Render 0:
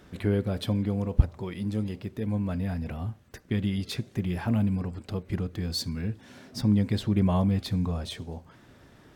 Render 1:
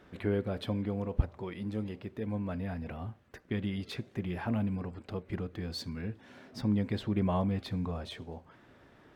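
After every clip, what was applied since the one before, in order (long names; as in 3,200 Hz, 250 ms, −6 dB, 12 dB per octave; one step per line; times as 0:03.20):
bass and treble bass −6 dB, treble −11 dB
level −2 dB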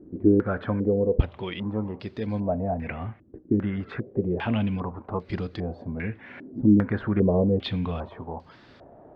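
low-pass on a step sequencer 2.5 Hz 320–4,600 Hz
level +6 dB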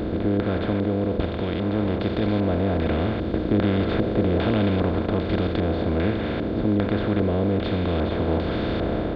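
compressor on every frequency bin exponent 0.2
automatic gain control
level −9 dB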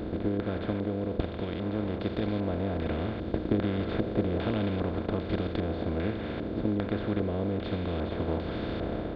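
transient designer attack +6 dB, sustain −1 dB
level −8.5 dB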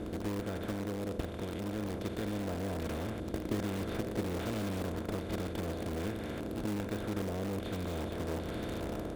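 variable-slope delta modulation 64 kbit/s
in parallel at −7 dB: wrap-around overflow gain 25 dB
on the sum: level −7.5 dB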